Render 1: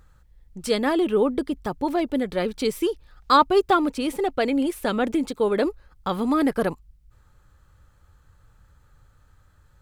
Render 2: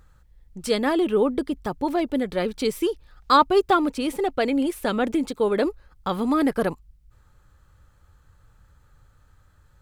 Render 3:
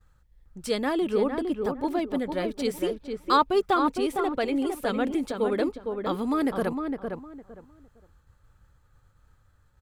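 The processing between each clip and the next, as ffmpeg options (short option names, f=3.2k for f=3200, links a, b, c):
-af anull
-filter_complex "[0:a]asplit=2[a][b];[b]adelay=458,lowpass=f=1.7k:p=1,volume=-5dB,asplit=2[c][d];[d]adelay=458,lowpass=f=1.7k:p=1,volume=0.23,asplit=2[e][f];[f]adelay=458,lowpass=f=1.7k:p=1,volume=0.23[g];[a][c][e][g]amix=inputs=4:normalize=0,agate=range=-33dB:threshold=-52dB:ratio=3:detection=peak,volume=-4.5dB"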